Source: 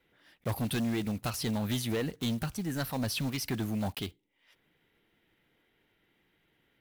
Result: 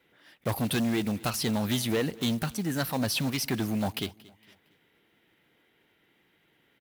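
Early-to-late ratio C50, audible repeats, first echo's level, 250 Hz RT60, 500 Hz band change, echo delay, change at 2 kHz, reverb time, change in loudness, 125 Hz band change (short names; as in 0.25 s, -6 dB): none, 2, -22.0 dB, none, +4.5 dB, 0.23 s, +5.0 dB, none, +4.0 dB, +2.0 dB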